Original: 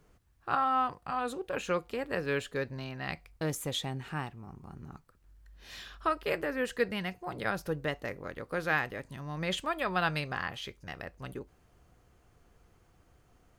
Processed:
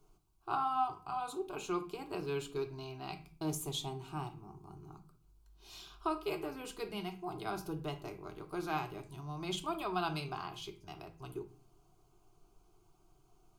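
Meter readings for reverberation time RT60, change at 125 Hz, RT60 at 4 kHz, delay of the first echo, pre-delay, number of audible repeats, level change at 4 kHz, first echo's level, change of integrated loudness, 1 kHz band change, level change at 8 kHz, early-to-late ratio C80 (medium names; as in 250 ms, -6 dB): 0.45 s, -5.0 dB, 0.30 s, no echo, 3 ms, no echo, -5.0 dB, no echo, -5.5 dB, -4.0 dB, -2.0 dB, 18.0 dB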